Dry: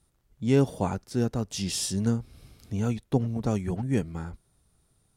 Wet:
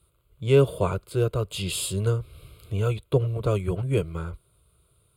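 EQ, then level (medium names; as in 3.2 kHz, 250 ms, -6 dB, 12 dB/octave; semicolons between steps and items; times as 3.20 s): high-pass 47 Hz; static phaser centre 1.2 kHz, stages 8; +7.5 dB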